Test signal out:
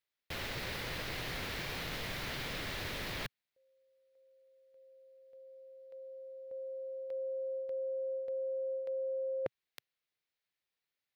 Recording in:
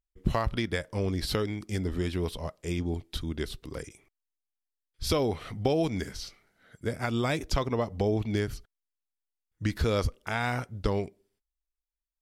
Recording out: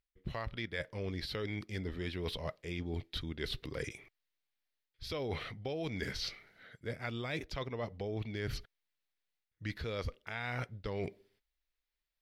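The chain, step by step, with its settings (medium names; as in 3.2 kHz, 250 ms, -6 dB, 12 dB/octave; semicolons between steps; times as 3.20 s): graphic EQ 125/500/2000/4000/8000 Hz +5/+5/+9/+8/-7 dB; reverse; compression 16:1, threshold -35 dBFS; reverse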